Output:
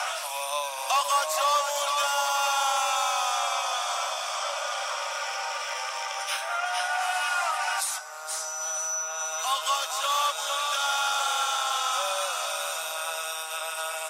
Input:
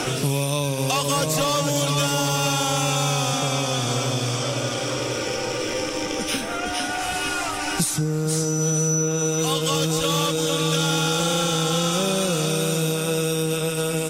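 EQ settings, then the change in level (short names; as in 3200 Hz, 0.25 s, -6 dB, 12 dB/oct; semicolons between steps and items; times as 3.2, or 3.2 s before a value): steep high-pass 580 Hz 96 dB/oct; bell 1100 Hz +8.5 dB 1.4 oct; -5.5 dB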